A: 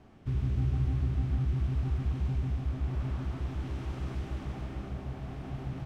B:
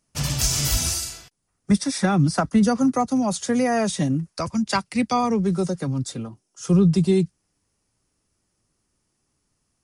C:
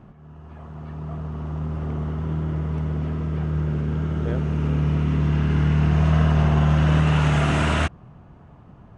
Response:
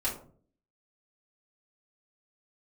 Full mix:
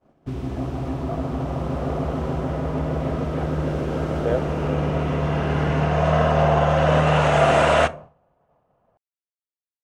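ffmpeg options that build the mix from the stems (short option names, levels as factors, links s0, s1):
-filter_complex "[0:a]highshelf=f=3700:g=7.5,acrossover=split=210[s0][s1];[s0]acompressor=threshold=0.0126:ratio=2.5[s2];[s2][s1]amix=inputs=2:normalize=0,volume=1.33,asplit=2[s3][s4];[s4]volume=0.141[s5];[2:a]lowshelf=f=430:t=q:w=3:g=-9,volume=1.19,asplit=2[s6][s7];[s7]volume=0.133[s8];[3:a]atrim=start_sample=2205[s9];[s5][s8]amix=inputs=2:normalize=0[s10];[s10][s9]afir=irnorm=-1:irlink=0[s11];[s3][s6][s11]amix=inputs=3:normalize=0,agate=range=0.0224:threshold=0.0158:ratio=3:detection=peak,equalizer=f=330:w=0.73:g=10.5"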